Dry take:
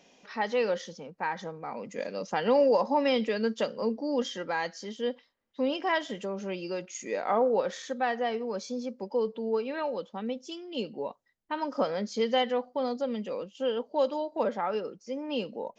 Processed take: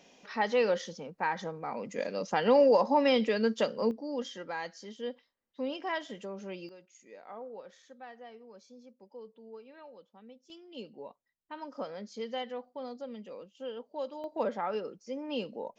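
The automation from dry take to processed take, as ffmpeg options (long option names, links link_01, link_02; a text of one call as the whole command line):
ffmpeg -i in.wav -af "asetnsamples=nb_out_samples=441:pad=0,asendcmd='3.91 volume volume -6.5dB;6.69 volume volume -19dB;10.5 volume volume -10.5dB;14.24 volume volume -3dB',volume=0.5dB" out.wav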